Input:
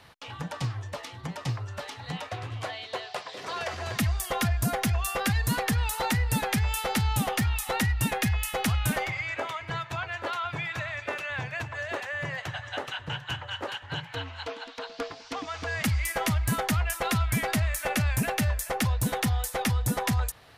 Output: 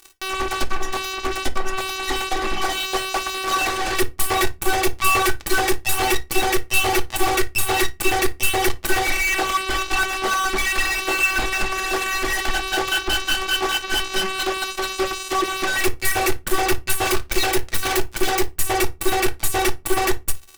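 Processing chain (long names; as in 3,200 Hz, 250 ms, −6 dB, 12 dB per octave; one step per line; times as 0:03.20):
0:17.05–0:18.58: phase distortion by the signal itself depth 0.38 ms
phases set to zero 379 Hz
fuzz pedal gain 41 dB, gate −43 dBFS
on a send: convolution reverb, pre-delay 3 ms, DRR 6 dB
on the sum: level −2 dB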